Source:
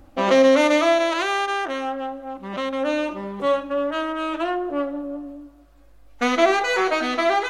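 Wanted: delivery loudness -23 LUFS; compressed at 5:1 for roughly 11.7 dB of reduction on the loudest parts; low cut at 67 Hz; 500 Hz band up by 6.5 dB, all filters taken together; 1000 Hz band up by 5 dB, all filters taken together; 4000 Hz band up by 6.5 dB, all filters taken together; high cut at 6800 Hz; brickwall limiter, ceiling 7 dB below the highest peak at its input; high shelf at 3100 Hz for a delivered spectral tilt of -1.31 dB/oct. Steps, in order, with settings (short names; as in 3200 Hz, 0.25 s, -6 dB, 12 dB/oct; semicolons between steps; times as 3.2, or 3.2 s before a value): HPF 67 Hz; LPF 6800 Hz; bell 500 Hz +6.5 dB; bell 1000 Hz +3.5 dB; high shelf 3100 Hz +4 dB; bell 4000 Hz +5.5 dB; compressor 5:1, threshold -19 dBFS; gain +1.5 dB; limiter -14 dBFS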